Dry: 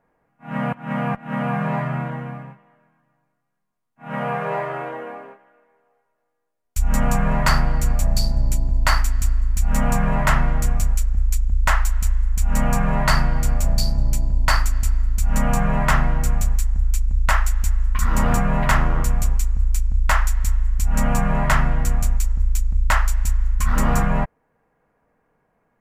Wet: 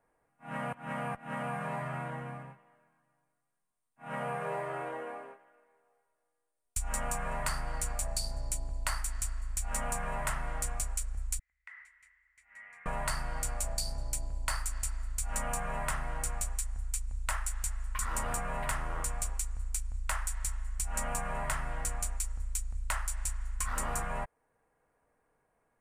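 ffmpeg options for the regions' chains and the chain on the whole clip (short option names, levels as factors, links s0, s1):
-filter_complex "[0:a]asettb=1/sr,asplit=3[s0][s1][s2];[s0]atrim=end=11.394[s3];[s1]atrim=start=11.39:end=12.86,asetpts=PTS-STARTPTS,afade=t=in:d=0.004:c=qsin,afade=t=out:st=1.466:d=0.004:c=qsin,bandpass=f=2000:t=q:w=16,acompressor=threshold=0.0126:ratio=12:attack=3.2:release=140:knee=1:detection=peak[s4];[s2]atrim=start=12.856[s5];[s3][s4]acrossfade=d=0.004:c1=hsin:c2=qsin[s6];[s6][s5]acrossfade=d=0.004:c1=qsin:c2=hsin,equalizer=f=9000:t=o:w=0.44:g=15,acrossover=split=440|7900[s7][s8][s9];[s7]acompressor=threshold=0.0447:ratio=4[s10];[s8]acompressor=threshold=0.0398:ratio=4[s11];[s9]acompressor=threshold=0.0224:ratio=4[s12];[s10][s11][s12]amix=inputs=3:normalize=0,equalizer=f=190:t=o:w=0.92:g=-7.5,volume=0.447"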